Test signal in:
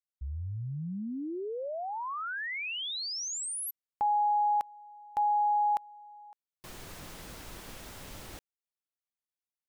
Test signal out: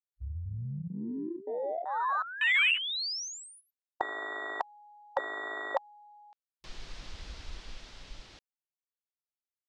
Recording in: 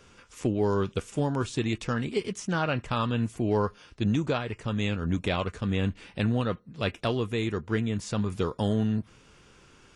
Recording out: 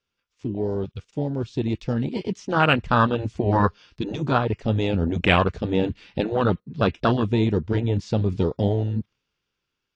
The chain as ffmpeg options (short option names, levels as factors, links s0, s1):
-af "aemphasis=mode=production:type=cd,volume=7.94,asoftclip=hard,volume=0.126,lowpass=f=4800:w=0.5412,lowpass=f=4800:w=1.3066,dynaudnorm=f=470:g=9:m=3.55,agate=range=0.224:threshold=0.00355:ratio=16:release=31:detection=rms,afwtdn=0.1,afftfilt=real='re*lt(hypot(re,im),1)':imag='im*lt(hypot(re,im),1)':win_size=1024:overlap=0.75,highshelf=f=2300:g=8"